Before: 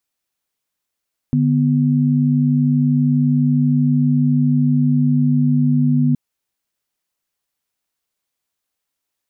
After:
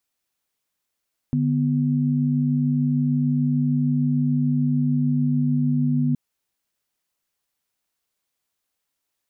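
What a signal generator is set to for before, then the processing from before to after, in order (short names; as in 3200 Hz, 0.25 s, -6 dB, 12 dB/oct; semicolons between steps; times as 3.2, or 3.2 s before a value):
chord D3/B3 sine, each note -15 dBFS 4.82 s
limiter -15 dBFS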